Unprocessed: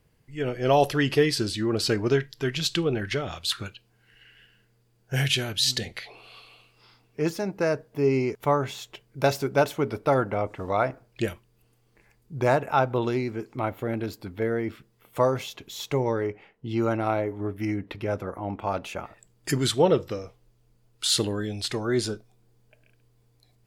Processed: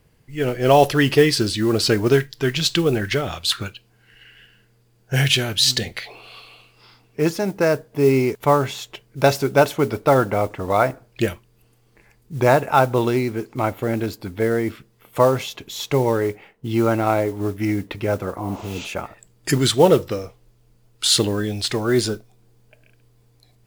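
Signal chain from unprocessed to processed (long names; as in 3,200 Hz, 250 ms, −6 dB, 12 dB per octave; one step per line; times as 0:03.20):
noise that follows the level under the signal 25 dB
healed spectral selection 0:18.44–0:18.83, 490–8,200 Hz both
level +6.5 dB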